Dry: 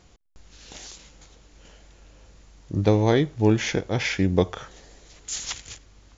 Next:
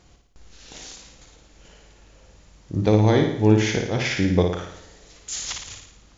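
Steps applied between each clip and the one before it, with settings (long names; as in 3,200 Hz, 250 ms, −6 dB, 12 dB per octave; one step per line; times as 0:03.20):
flutter between parallel walls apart 9.6 metres, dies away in 0.71 s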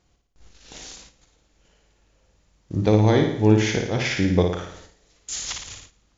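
noise gate −45 dBFS, range −11 dB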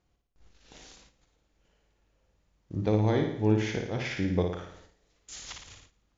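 high-shelf EQ 5,400 Hz −10 dB
level −8 dB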